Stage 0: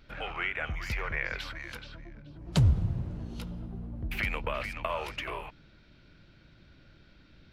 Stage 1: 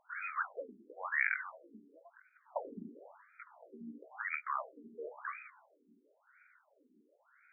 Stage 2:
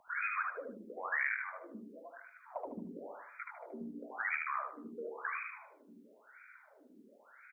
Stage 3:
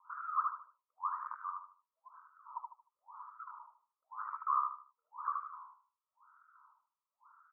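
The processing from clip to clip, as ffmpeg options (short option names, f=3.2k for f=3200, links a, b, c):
-af "equalizer=f=340:w=5.2:g=-12.5,bandreject=f=66.49:t=h:w=4,bandreject=f=132.98:t=h:w=4,bandreject=f=199.47:t=h:w=4,bandreject=f=265.96:t=h:w=4,bandreject=f=332.45:t=h:w=4,bandreject=f=398.94:t=h:w=4,bandreject=f=465.43:t=h:w=4,bandreject=f=531.92:t=h:w=4,bandreject=f=598.41:t=h:w=4,bandreject=f=664.9:t=h:w=4,bandreject=f=731.39:t=h:w=4,bandreject=f=797.88:t=h:w=4,bandreject=f=864.37:t=h:w=4,bandreject=f=930.86:t=h:w=4,bandreject=f=997.35:t=h:w=4,bandreject=f=1.06384k:t=h:w=4,bandreject=f=1.13033k:t=h:w=4,afftfilt=real='re*between(b*sr/1024,290*pow(1800/290,0.5+0.5*sin(2*PI*0.97*pts/sr))/1.41,290*pow(1800/290,0.5+0.5*sin(2*PI*0.97*pts/sr))*1.41)':imag='im*between(b*sr/1024,290*pow(1800/290,0.5+0.5*sin(2*PI*0.97*pts/sr))/1.41,290*pow(1800/290,0.5+0.5*sin(2*PI*0.97*pts/sr))*1.41)':win_size=1024:overlap=0.75,volume=3dB"
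-filter_complex "[0:a]acrossover=split=270|1600[a][b][c];[a]acompressor=threshold=-53dB:ratio=4[d];[b]acompressor=threshold=-52dB:ratio=4[e];[c]acompressor=threshold=-43dB:ratio=4[f];[d][e][f]amix=inputs=3:normalize=0,aecho=1:1:76|152|228|304:0.668|0.207|0.0642|0.0199,volume=7dB"
-af "aeval=exprs='(mod(18.8*val(0)+1,2)-1)/18.8':c=same,asuperpass=centerf=1100:order=8:qfactor=3,volume=7dB"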